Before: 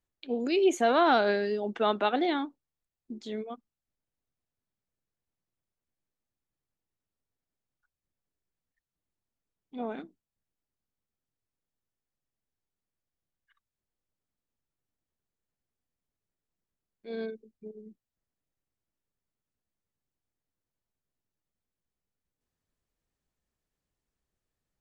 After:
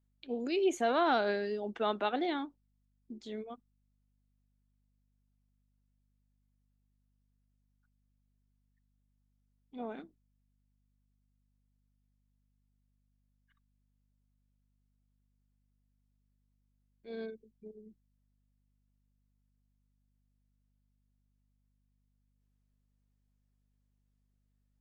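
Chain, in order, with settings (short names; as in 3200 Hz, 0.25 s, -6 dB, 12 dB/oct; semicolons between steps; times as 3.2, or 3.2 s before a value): hum 50 Hz, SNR 34 dB; gain -5.5 dB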